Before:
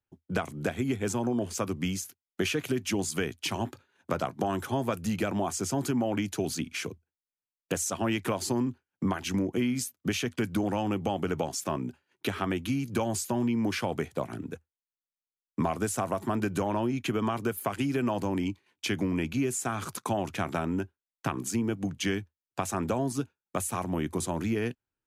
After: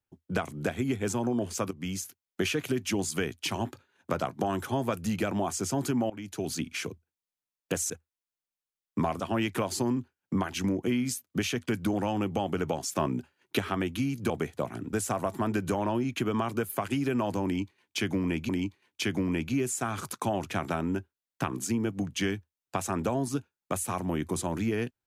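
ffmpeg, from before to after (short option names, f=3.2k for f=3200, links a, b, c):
-filter_complex "[0:a]asplit=10[a][b][c][d][e][f][g][h][i][j];[a]atrim=end=1.71,asetpts=PTS-STARTPTS,afade=t=out:st=1.706:d=0.004:c=hsin:silence=0.177828[k];[b]atrim=start=1.71:end=6.1,asetpts=PTS-STARTPTS,afade=t=in:d=0.29:silence=0.177828,afade=t=out:st=4.386:d=0.004:c=hsin:silence=0.1[l];[c]atrim=start=6.1:end=7.902,asetpts=PTS-STARTPTS,afade=t=in:d=0.46:silence=0.1[m];[d]atrim=start=14.508:end=15.812[n];[e]atrim=start=7.898:end=11.662[o];[f]atrim=start=11.658:end=12.292,asetpts=PTS-STARTPTS,volume=3dB[p];[g]atrim=start=12.288:end=13.002[q];[h]atrim=start=13.878:end=14.512[r];[i]atrim=start=15.808:end=19.372[s];[j]atrim=start=18.328[t];[k][l][m]concat=n=3:v=0:a=1[u];[u][n]acrossfade=d=0.004:c1=hsin:c2=hsin[v];[v][o]acrossfade=d=0.004:c1=hsin:c2=hsin[w];[w][p]acrossfade=d=0.004:c1=hsin:c2=hsin[x];[x][q]acrossfade=d=0.004:c1=hsin:c2=hsin[y];[y][r]acrossfade=d=0.004:c1=hsin:c2=hsin[z];[z][s]acrossfade=d=0.004:c1=hsin:c2=hsin[aa];[aa][t]acrossfade=d=0.004:c1=hsin:c2=hsin"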